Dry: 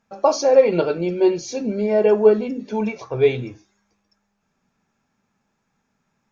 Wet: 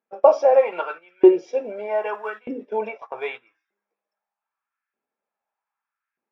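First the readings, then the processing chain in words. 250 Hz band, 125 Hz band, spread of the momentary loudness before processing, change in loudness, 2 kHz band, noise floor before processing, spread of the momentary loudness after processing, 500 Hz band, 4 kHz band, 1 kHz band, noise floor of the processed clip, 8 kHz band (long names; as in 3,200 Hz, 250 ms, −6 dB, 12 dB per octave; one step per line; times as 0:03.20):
−2.5 dB, below −20 dB, 11 LU, −1.5 dB, −0.5 dB, −73 dBFS, 16 LU, −2.5 dB, −11.0 dB, +1.5 dB, below −85 dBFS, can't be measured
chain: one scale factor per block 7 bits
auto-filter high-pass saw up 0.81 Hz 350–1,700 Hz
Savitzky-Golay smoothing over 25 samples
noise gate −32 dBFS, range −13 dB
level −2.5 dB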